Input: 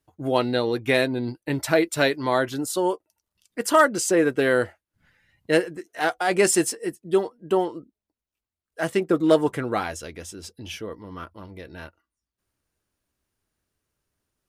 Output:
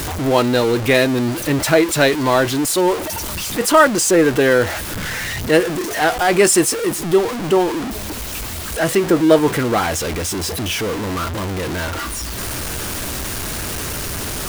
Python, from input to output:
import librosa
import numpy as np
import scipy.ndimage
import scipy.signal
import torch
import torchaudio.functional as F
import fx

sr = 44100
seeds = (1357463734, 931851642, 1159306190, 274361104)

y = x + 0.5 * 10.0 ** (-23.0 / 20.0) * np.sign(x)
y = F.gain(torch.from_numpy(y), 4.5).numpy()